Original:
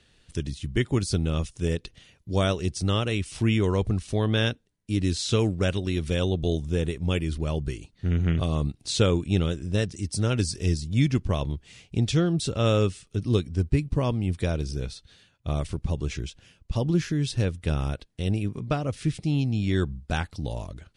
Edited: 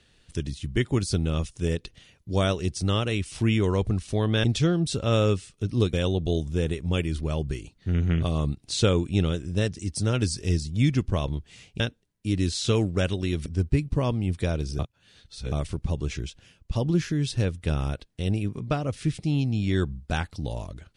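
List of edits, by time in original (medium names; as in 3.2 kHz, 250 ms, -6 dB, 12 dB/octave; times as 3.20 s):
4.44–6.10 s: swap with 11.97–13.46 s
14.79–15.52 s: reverse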